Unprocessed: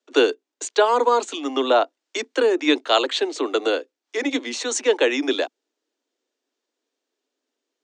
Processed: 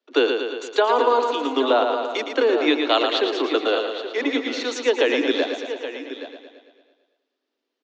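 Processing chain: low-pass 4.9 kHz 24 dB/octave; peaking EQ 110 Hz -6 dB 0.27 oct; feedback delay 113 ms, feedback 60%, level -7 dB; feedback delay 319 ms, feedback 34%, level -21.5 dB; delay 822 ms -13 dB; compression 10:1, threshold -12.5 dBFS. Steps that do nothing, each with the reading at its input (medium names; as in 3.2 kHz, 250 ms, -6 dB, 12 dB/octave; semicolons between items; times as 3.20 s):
peaking EQ 110 Hz: input has nothing below 210 Hz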